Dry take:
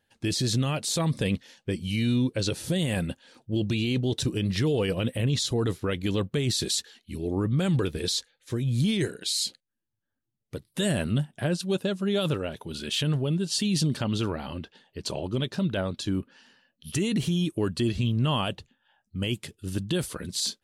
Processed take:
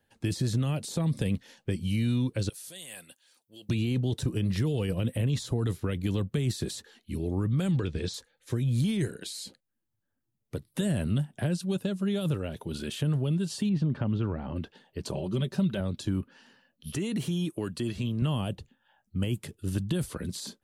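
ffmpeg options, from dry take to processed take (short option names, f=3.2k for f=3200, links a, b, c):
-filter_complex "[0:a]asettb=1/sr,asplit=3[a][b][c];[a]atrim=end=2.494[d];[b]atrim=start=2.49:end=3.69,asetpts=PTS-STARTPTS,afade=t=in:d=0.004:c=qsin,afade=t=out:st=1.196:d=0.004:c=qsin,aderivative[e];[c]atrim=start=3.686[f];[d][e]acrossfade=d=0.004:c1=hsin:c2=qsin[g];[g][f]acrossfade=d=0.004:c1=qsin:c2=hsin,asettb=1/sr,asplit=3[h][i][j];[h]atrim=end=7.714[k];[i]atrim=start=7.71:end=8.14,asetpts=PTS-STARTPTS,afade=t=in:d=0.004:c=qsin,afade=t=out:st=0.426:d=0.004:c=qsin,lowpass=f=6.7k:w=0.5412,lowpass=f=6.7k:w=1.3066[l];[j]atrim=start=8.136[m];[k][l]acrossfade=d=0.004:c1=hsin:c2=qsin[n];[n][m]acrossfade=d=0.004:c1=qsin:c2=hsin,asettb=1/sr,asplit=3[o][p][q];[o]atrim=end=13.694[r];[p]atrim=start=13.69:end=14.56,asetpts=PTS-STARTPTS,afade=t=in:d=0.004:c=qsin,afade=t=out:st=0.866:d=0.004:c=qsin,lowpass=1.6k[s];[q]atrim=start=14.556[t];[r][s]acrossfade=d=0.004:c1=hsin:c2=qsin[u];[u][t]acrossfade=d=0.004:c1=qsin:c2=hsin,asettb=1/sr,asplit=3[v][w][x];[v]atrim=end=15.134[y];[w]atrim=start=15.13:end=15.8,asetpts=PTS-STARTPTS,afade=t=in:d=0.004:c=qsin,afade=t=out:st=0.666:d=0.004:c=qsin,aecho=1:1:5.2:0.65,atrim=end_sample=29547[z];[x]atrim=start=15.796[aa];[y][z]acrossfade=d=0.004:c1=hsin:c2=qsin[ab];[ab][aa]acrossfade=d=0.004:c1=qsin:c2=hsin,asettb=1/sr,asplit=3[ac][ad][ae];[ac]atrim=end=16.954[af];[ad]atrim=start=16.95:end=18.22,asetpts=PTS-STARTPTS,afade=t=in:d=0.004:c=qsin,afade=t=out:st=1.266:d=0.004:c=qsin,highpass=f=290:p=1[ag];[ae]atrim=start=18.216[ah];[af][ag]acrossfade=d=0.004:c1=hsin:c2=qsin[ai];[ai][ah]acrossfade=d=0.004:c1=qsin:c2=hsin,equalizer=f=4.2k:t=o:w=2.9:g=-6,acrossover=split=200|750|1800|7000[aj][ak][al][am][an];[aj]acompressor=threshold=-29dB:ratio=4[ao];[ak]acompressor=threshold=-38dB:ratio=4[ap];[al]acompressor=threshold=-51dB:ratio=4[aq];[am]acompressor=threshold=-46dB:ratio=4[ar];[an]acompressor=threshold=-48dB:ratio=4[as];[ao][ap][aq][ar][as]amix=inputs=5:normalize=0,volume=3dB"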